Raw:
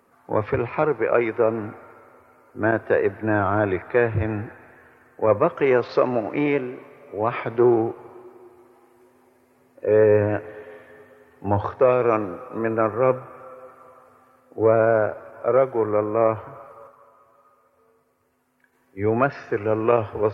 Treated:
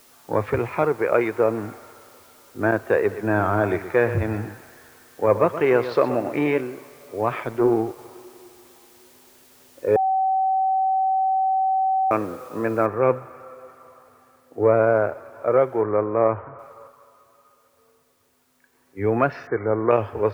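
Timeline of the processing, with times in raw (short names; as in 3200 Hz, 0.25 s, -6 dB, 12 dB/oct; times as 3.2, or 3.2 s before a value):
2.99–6.61 echo 0.122 s -12 dB
7.34–7.99 AM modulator 110 Hz, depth 30%
9.96–12.11 bleep 764 Hz -17.5 dBFS
12.86 noise floor step -54 dB -68 dB
15.81–16.59 LPF 2200 Hz 24 dB/oct
19.47–19.91 brick-wall FIR low-pass 2300 Hz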